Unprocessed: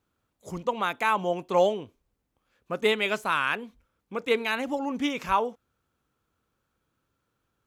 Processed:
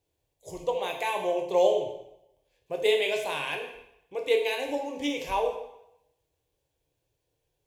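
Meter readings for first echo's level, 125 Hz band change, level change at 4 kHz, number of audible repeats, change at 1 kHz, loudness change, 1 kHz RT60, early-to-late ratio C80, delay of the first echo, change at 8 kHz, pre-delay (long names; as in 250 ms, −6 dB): no echo audible, −8.5 dB, 0.0 dB, no echo audible, −4.5 dB, −1.0 dB, 0.80 s, 9.0 dB, no echo audible, +1.5 dB, 9 ms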